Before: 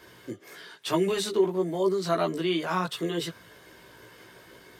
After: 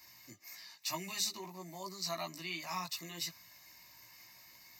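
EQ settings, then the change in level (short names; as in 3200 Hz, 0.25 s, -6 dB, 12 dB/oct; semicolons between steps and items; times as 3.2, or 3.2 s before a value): pre-emphasis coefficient 0.9; fixed phaser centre 2200 Hz, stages 8; +6.0 dB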